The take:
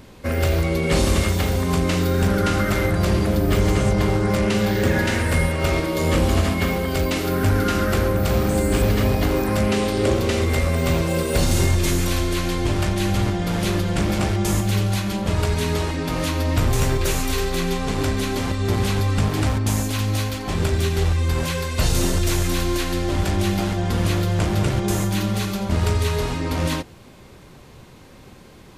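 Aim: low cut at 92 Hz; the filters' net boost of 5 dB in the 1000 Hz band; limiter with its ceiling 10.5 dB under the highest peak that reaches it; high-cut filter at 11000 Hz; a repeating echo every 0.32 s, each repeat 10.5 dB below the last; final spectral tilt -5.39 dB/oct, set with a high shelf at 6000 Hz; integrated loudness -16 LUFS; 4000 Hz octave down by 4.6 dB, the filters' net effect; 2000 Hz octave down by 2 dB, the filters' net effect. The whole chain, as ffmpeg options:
-af "highpass=92,lowpass=11k,equalizer=f=1k:t=o:g=7.5,equalizer=f=2k:t=o:g=-4,equalizer=f=4k:t=o:g=-7.5,highshelf=f=6k:g=6.5,alimiter=limit=-17.5dB:level=0:latency=1,aecho=1:1:320|640|960:0.299|0.0896|0.0269,volume=10dB"

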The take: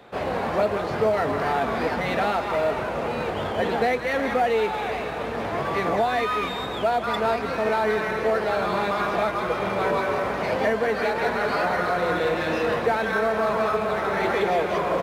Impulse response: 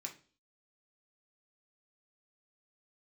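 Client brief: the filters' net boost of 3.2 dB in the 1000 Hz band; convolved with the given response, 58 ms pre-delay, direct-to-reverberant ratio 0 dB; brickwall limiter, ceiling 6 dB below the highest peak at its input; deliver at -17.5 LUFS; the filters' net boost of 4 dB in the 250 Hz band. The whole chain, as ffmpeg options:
-filter_complex "[0:a]equalizer=f=250:t=o:g=5,equalizer=f=1k:t=o:g=4,alimiter=limit=-14dB:level=0:latency=1,asplit=2[a][b];[1:a]atrim=start_sample=2205,adelay=58[c];[b][c]afir=irnorm=-1:irlink=0,volume=2.5dB[d];[a][d]amix=inputs=2:normalize=0,volume=3dB"

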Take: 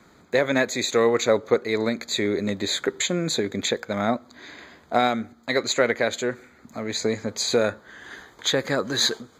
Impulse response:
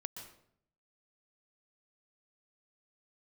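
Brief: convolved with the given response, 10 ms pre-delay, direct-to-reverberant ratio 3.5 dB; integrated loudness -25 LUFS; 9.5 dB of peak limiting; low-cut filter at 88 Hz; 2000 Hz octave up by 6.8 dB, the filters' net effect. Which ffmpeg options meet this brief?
-filter_complex "[0:a]highpass=88,equalizer=f=2k:t=o:g=8,alimiter=limit=-12dB:level=0:latency=1,asplit=2[a][b];[1:a]atrim=start_sample=2205,adelay=10[c];[b][c]afir=irnorm=-1:irlink=0,volume=-1dB[d];[a][d]amix=inputs=2:normalize=0,volume=-2dB"

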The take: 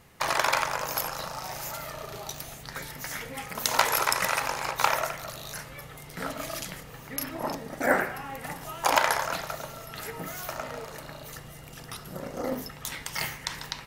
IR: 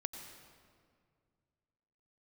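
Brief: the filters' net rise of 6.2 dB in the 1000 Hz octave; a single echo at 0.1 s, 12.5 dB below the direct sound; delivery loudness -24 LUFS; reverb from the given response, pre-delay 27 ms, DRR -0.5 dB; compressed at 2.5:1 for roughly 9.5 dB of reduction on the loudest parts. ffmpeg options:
-filter_complex "[0:a]equalizer=f=1k:t=o:g=7.5,acompressor=threshold=-27dB:ratio=2.5,aecho=1:1:100:0.237,asplit=2[a][b];[1:a]atrim=start_sample=2205,adelay=27[c];[b][c]afir=irnorm=-1:irlink=0,volume=1.5dB[d];[a][d]amix=inputs=2:normalize=0,volume=4.5dB"

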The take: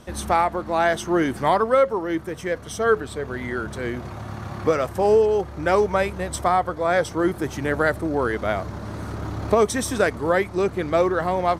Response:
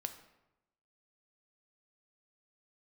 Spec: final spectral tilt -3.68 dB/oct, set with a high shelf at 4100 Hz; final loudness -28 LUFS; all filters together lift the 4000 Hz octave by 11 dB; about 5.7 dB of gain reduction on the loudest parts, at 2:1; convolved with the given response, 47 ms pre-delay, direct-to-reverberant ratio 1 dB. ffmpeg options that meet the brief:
-filter_complex "[0:a]equalizer=f=4k:t=o:g=9,highshelf=f=4.1k:g=8.5,acompressor=threshold=-23dB:ratio=2,asplit=2[a][b];[1:a]atrim=start_sample=2205,adelay=47[c];[b][c]afir=irnorm=-1:irlink=0,volume=0.5dB[d];[a][d]amix=inputs=2:normalize=0,volume=-5dB"

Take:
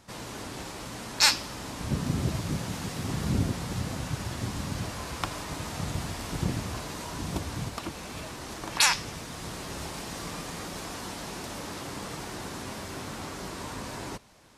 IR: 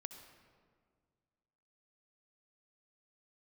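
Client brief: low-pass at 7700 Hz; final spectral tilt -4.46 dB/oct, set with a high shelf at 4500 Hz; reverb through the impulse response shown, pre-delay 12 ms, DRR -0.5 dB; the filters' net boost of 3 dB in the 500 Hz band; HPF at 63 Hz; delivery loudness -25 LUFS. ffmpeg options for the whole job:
-filter_complex "[0:a]highpass=63,lowpass=7.7k,equalizer=f=500:t=o:g=4,highshelf=f=4.5k:g=-6,asplit=2[a][b];[1:a]atrim=start_sample=2205,adelay=12[c];[b][c]afir=irnorm=-1:irlink=0,volume=4.5dB[d];[a][d]amix=inputs=2:normalize=0,volume=5dB"

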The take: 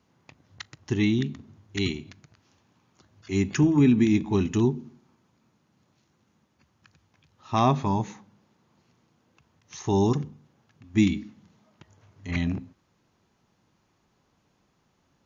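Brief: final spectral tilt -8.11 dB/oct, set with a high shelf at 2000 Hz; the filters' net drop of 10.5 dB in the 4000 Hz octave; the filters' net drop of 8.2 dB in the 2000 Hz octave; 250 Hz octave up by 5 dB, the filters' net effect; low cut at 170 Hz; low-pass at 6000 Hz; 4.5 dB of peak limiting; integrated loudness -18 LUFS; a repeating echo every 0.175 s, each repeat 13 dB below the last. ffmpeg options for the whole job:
-af "highpass=170,lowpass=6k,equalizer=f=250:t=o:g=7.5,highshelf=f=2k:g=-7,equalizer=f=2k:t=o:g=-4,equalizer=f=4k:t=o:g=-4.5,alimiter=limit=-10.5dB:level=0:latency=1,aecho=1:1:175|350|525:0.224|0.0493|0.0108,volume=5dB"

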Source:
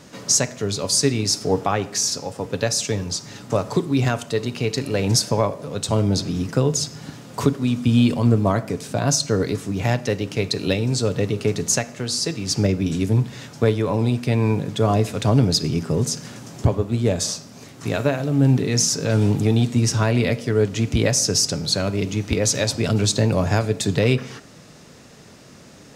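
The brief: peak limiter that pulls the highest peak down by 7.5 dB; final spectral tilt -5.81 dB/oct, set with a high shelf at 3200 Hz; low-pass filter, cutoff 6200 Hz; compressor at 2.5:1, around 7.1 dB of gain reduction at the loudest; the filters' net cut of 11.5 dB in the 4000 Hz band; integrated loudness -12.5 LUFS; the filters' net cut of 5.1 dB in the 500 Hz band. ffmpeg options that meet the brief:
-af "lowpass=6.2k,equalizer=f=500:t=o:g=-6,highshelf=f=3.2k:g=-8,equalizer=f=4k:t=o:g=-6.5,acompressor=threshold=-23dB:ratio=2.5,volume=17dB,alimiter=limit=-2dB:level=0:latency=1"

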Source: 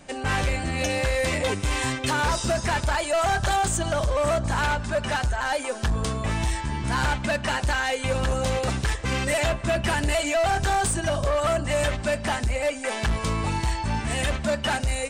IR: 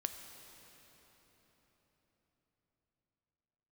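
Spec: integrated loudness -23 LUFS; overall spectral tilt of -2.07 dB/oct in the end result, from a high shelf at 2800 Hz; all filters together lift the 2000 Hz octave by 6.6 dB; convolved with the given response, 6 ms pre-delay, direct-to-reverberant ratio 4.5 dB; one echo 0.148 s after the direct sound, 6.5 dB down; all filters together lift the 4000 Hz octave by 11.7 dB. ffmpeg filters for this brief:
-filter_complex "[0:a]equalizer=f=2k:t=o:g=3.5,highshelf=f=2.8k:g=7.5,equalizer=f=4k:t=o:g=8,aecho=1:1:148:0.473,asplit=2[a][b];[1:a]atrim=start_sample=2205,adelay=6[c];[b][c]afir=irnorm=-1:irlink=0,volume=-4dB[d];[a][d]amix=inputs=2:normalize=0,volume=-5dB"

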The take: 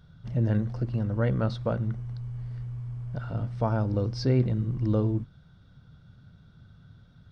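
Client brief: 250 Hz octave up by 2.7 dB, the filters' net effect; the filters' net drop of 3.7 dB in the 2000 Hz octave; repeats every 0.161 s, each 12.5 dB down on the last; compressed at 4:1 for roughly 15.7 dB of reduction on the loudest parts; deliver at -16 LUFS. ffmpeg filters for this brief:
-af "equalizer=f=250:t=o:g=3.5,equalizer=f=2k:t=o:g=-5.5,acompressor=threshold=-37dB:ratio=4,aecho=1:1:161|322|483:0.237|0.0569|0.0137,volume=23.5dB"

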